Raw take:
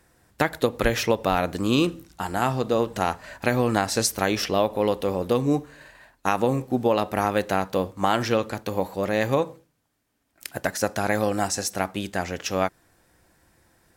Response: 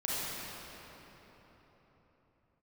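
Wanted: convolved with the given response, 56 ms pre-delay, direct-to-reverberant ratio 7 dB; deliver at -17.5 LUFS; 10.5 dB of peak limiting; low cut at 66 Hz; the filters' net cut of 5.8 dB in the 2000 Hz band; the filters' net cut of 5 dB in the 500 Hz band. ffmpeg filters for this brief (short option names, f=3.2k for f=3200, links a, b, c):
-filter_complex "[0:a]highpass=66,equalizer=f=500:t=o:g=-5.5,equalizer=f=2k:t=o:g=-7.5,alimiter=limit=-18.5dB:level=0:latency=1,asplit=2[a][b];[1:a]atrim=start_sample=2205,adelay=56[c];[b][c]afir=irnorm=-1:irlink=0,volume=-14dB[d];[a][d]amix=inputs=2:normalize=0,volume=14dB"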